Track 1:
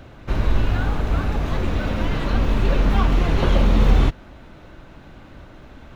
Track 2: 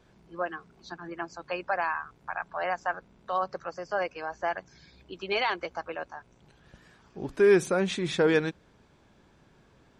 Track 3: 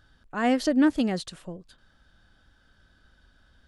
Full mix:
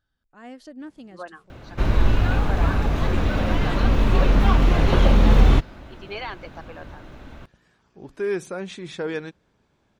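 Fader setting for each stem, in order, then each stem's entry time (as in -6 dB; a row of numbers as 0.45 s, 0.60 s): +1.0 dB, -5.5 dB, -18.0 dB; 1.50 s, 0.80 s, 0.00 s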